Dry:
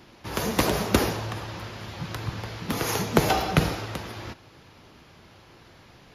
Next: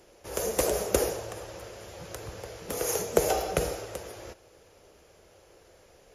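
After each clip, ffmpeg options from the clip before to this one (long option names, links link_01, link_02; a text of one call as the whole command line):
ffmpeg -i in.wav -af "equalizer=frequency=125:width_type=o:width=1:gain=-11,equalizer=frequency=250:width_type=o:width=1:gain=-11,equalizer=frequency=500:width_type=o:width=1:gain=10,equalizer=frequency=1000:width_type=o:width=1:gain=-8,equalizer=frequency=2000:width_type=o:width=1:gain=-4,equalizer=frequency=4000:width_type=o:width=1:gain=-9,equalizer=frequency=8000:width_type=o:width=1:gain=10,volume=-2.5dB" out.wav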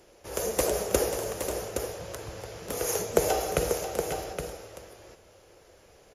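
ffmpeg -i in.wav -af "aecho=1:1:539|818:0.316|0.422" out.wav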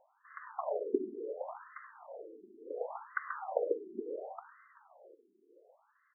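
ffmpeg -i in.wav -af "aeval=exprs='0.596*(cos(1*acos(clip(val(0)/0.596,-1,1)))-cos(1*PI/2))+0.119*(cos(3*acos(clip(val(0)/0.596,-1,1)))-cos(3*PI/2))+0.0266*(cos(8*acos(clip(val(0)/0.596,-1,1)))-cos(8*PI/2))':channel_layout=same,afftfilt=real='re*between(b*sr/1024,290*pow(1500/290,0.5+0.5*sin(2*PI*0.7*pts/sr))/1.41,290*pow(1500/290,0.5+0.5*sin(2*PI*0.7*pts/sr))*1.41)':imag='im*between(b*sr/1024,290*pow(1500/290,0.5+0.5*sin(2*PI*0.7*pts/sr))/1.41,290*pow(1500/290,0.5+0.5*sin(2*PI*0.7*pts/sr))*1.41)':win_size=1024:overlap=0.75,volume=4dB" out.wav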